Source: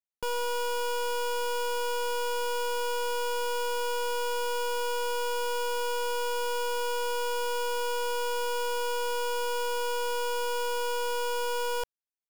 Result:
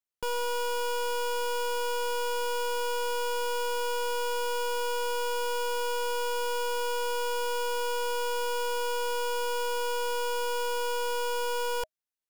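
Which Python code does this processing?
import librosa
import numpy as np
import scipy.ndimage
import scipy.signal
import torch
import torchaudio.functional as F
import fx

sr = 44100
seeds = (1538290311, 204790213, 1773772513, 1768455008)

y = fx.notch(x, sr, hz=630.0, q=18.0)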